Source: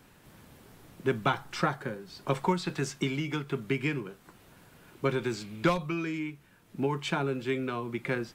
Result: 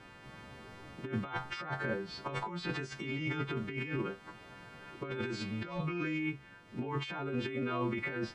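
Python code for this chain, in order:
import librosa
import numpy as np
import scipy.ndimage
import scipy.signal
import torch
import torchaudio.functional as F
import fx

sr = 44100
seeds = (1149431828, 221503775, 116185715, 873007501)

y = fx.freq_snap(x, sr, grid_st=2)
y = fx.over_compress(y, sr, threshold_db=-36.0, ratio=-1.0)
y = scipy.signal.sosfilt(scipy.signal.butter(2, 2600.0, 'lowpass', fs=sr, output='sos'), y)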